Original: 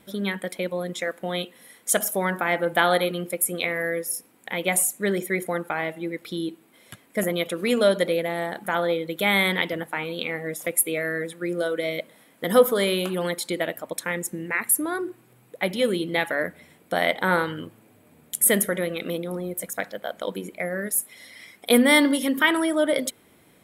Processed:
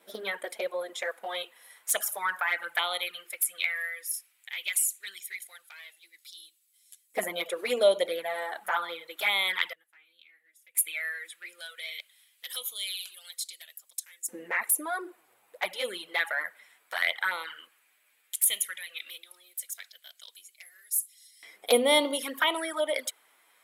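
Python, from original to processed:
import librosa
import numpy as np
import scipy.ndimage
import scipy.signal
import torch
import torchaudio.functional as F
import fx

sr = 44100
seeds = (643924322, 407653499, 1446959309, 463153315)

y = fx.env_flanger(x, sr, rest_ms=11.4, full_db=-17.0)
y = fx.filter_lfo_highpass(y, sr, shape='saw_up', hz=0.14, low_hz=490.0, high_hz=6700.0, q=1.2)
y = fx.tone_stack(y, sr, knobs='10-0-1', at=(9.73, 10.75))
y = y * 10.0 ** (-1.0 / 20.0)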